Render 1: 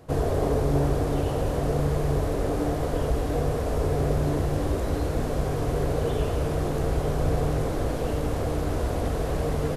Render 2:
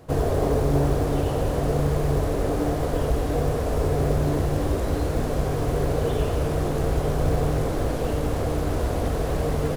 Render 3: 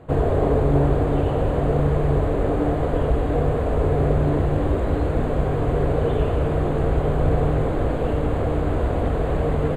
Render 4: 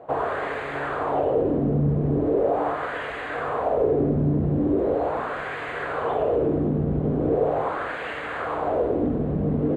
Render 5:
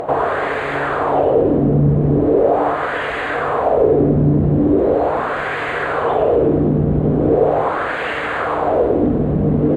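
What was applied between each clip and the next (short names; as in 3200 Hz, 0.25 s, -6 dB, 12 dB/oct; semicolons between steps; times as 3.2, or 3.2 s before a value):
short-mantissa float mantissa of 4-bit; gain +2 dB
running mean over 8 samples; gain +3 dB
high shelf 2500 Hz +10.5 dB; wah 0.4 Hz 200–1900 Hz, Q 2.4; in parallel at +3 dB: limiter -23 dBFS, peak gain reduction 7.5 dB
upward compressor, threshold -24 dBFS; gain +8 dB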